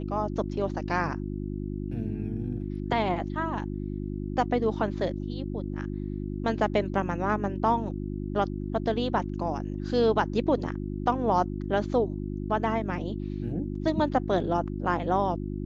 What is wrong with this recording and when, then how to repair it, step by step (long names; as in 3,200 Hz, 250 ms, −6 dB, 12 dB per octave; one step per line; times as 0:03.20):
mains hum 50 Hz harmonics 7 −33 dBFS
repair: hum removal 50 Hz, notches 7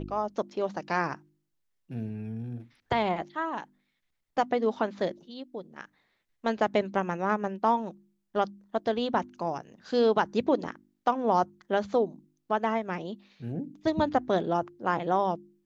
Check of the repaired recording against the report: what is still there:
none of them is left